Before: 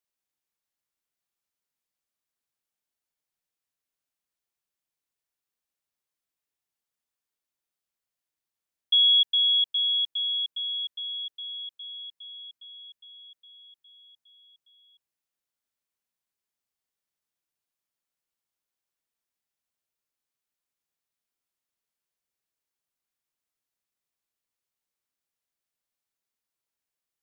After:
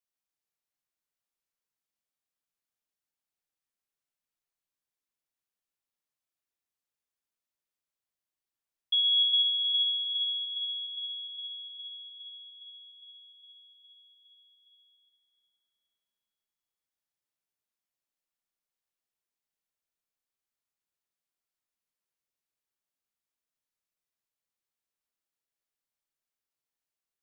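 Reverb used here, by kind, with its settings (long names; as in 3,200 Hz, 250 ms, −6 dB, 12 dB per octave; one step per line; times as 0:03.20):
comb and all-pass reverb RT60 3.7 s, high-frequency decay 0.8×, pre-delay 5 ms, DRR 3 dB
level −5.5 dB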